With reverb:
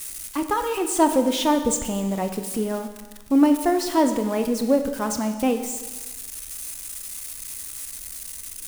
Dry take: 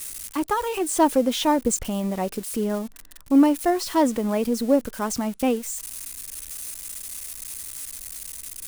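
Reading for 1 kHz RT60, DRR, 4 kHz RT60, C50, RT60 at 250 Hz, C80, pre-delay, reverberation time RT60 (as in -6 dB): 1.3 s, 7.0 dB, 1.3 s, 9.0 dB, 1.3 s, 10.5 dB, 28 ms, 1.3 s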